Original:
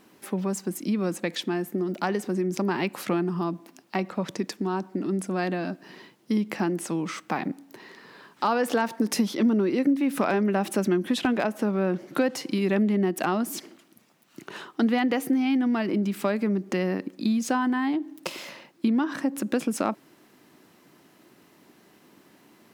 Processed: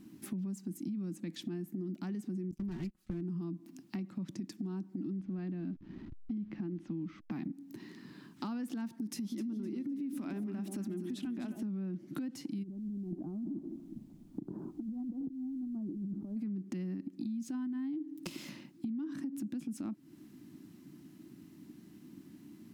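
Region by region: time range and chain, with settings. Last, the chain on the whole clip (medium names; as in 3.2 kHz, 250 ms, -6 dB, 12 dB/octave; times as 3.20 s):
2.51–3.21 s: comb filter that takes the minimum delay 5.4 ms + gate -32 dBFS, range -24 dB
5.18–7.31 s: send-on-delta sampling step -43.5 dBFS + distance through air 260 m
9.09–11.63 s: tone controls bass -6 dB, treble +1 dB + echo whose repeats swap between lows and highs 128 ms, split 820 Hz, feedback 61%, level -7 dB
12.62–16.36 s: inverse Chebyshev low-pass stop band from 2.7 kHz, stop band 60 dB + compressor with a negative ratio -35 dBFS + added noise pink -69 dBFS
whole clip: FFT filter 310 Hz 0 dB, 460 Hz -23 dB, 7 kHz -12 dB; peak limiter -25.5 dBFS; compression 5:1, threshold -44 dBFS; trim +6.5 dB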